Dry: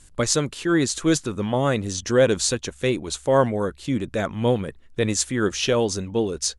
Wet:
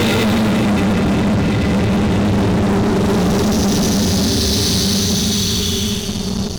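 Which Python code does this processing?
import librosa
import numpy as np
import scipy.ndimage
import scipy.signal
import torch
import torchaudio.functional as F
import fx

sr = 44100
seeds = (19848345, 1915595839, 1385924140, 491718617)

p1 = scipy.signal.sosfilt(scipy.signal.butter(6, 5500.0, 'lowpass', fs=sr, output='sos'), x)
p2 = fx.high_shelf(p1, sr, hz=4300.0, db=-3.0)
p3 = fx.level_steps(p2, sr, step_db=16)
p4 = p2 + (p3 * librosa.db_to_amplitude(-1.5))
p5 = fx.comb_fb(p4, sr, f0_hz=200.0, decay_s=0.56, harmonics='all', damping=0.0, mix_pct=70)
p6 = fx.paulstretch(p5, sr, seeds[0], factor=24.0, window_s=0.05, from_s=1.76)
y = fx.fuzz(p6, sr, gain_db=42.0, gate_db=-49.0)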